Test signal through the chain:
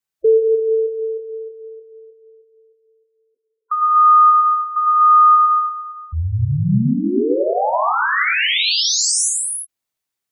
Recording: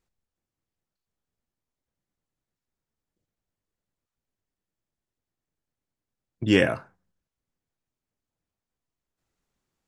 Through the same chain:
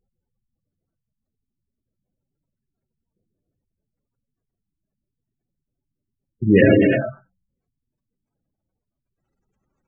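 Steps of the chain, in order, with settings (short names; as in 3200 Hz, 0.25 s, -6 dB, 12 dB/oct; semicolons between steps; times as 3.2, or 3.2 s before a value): non-linear reverb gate 0.38 s flat, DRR -2 dB; spectral gate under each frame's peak -15 dB strong; gain +5.5 dB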